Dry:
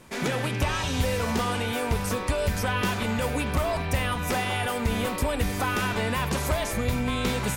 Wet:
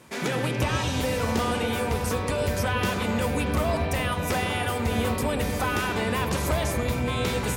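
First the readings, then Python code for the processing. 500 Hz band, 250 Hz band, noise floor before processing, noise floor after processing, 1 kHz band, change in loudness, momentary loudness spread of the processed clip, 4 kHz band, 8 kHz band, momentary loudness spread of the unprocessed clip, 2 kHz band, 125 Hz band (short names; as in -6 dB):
+2.0 dB, +1.0 dB, -31 dBFS, -29 dBFS, +0.5 dB, +0.5 dB, 1 LU, 0.0 dB, 0.0 dB, 1 LU, 0.0 dB, +1.0 dB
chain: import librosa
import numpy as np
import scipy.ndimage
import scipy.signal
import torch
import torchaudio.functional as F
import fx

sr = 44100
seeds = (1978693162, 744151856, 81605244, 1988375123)

p1 = scipy.signal.sosfilt(scipy.signal.butter(2, 68.0, 'highpass', fs=sr, output='sos'), x)
p2 = fx.hum_notches(p1, sr, base_hz=50, count=5)
y = p2 + fx.echo_wet_lowpass(p2, sr, ms=124, feedback_pct=80, hz=590.0, wet_db=-4.5, dry=0)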